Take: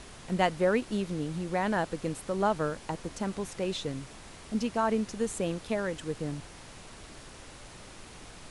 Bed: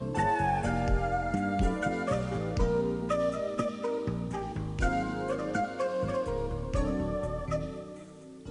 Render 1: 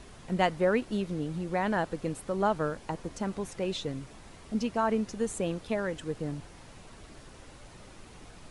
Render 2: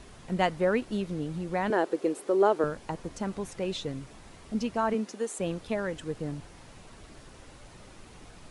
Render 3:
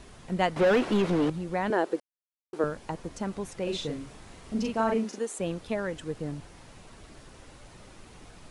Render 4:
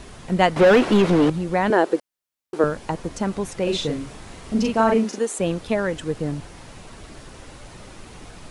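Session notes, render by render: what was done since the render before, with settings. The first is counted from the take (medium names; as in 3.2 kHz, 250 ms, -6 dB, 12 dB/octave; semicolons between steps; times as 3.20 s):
noise reduction 6 dB, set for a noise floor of -49 dBFS
1.70–2.64 s: resonant high-pass 370 Hz, resonance Q 3.5; 4.93–5.39 s: high-pass 160 Hz -> 350 Hz 24 dB/octave
0.56–1.30 s: overdrive pedal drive 28 dB, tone 1.4 kHz, clips at -14.5 dBFS; 2.00–2.53 s: mute; 3.63–5.19 s: doubling 40 ms -3 dB
trim +8.5 dB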